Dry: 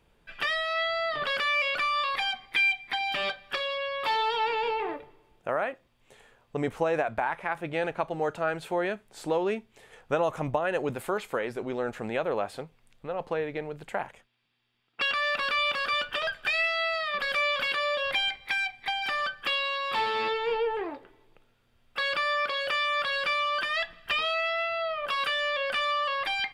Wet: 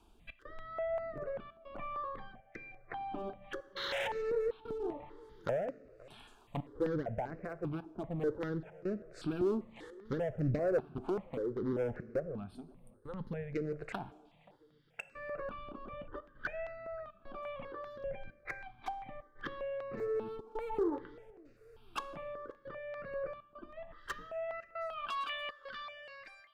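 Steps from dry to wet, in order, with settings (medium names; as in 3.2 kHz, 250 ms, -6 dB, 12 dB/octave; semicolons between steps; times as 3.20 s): fade out at the end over 3.96 s; time-frequency box 12.20–13.54 s, 260–8300 Hz -15 dB; low-pass that closes with the level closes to 450 Hz, closed at -29 dBFS; painted sound noise, 3.76–4.08 s, 340–4300 Hz -38 dBFS; in parallel at -4.5 dB: wavefolder -33.5 dBFS; on the sum: trance gate "xx.xxxxxxx.xxx" 100 bpm -24 dB; rotary cabinet horn 0.9 Hz; filtered feedback delay 528 ms, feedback 46%, low-pass 2.1 kHz, level -23.5 dB; reverberation, pre-delay 3 ms, DRR 15 dB; stepped phaser 5.1 Hz 520–3300 Hz; trim +2.5 dB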